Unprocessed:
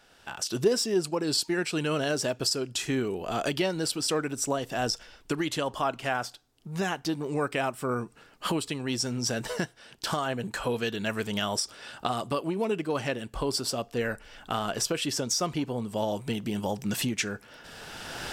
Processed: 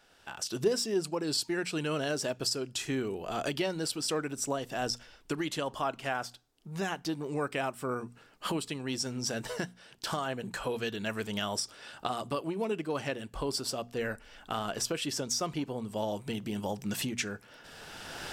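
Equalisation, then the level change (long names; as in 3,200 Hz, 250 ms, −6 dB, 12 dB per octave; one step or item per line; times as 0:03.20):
mains-hum notches 60/120/180/240 Hz
−4.0 dB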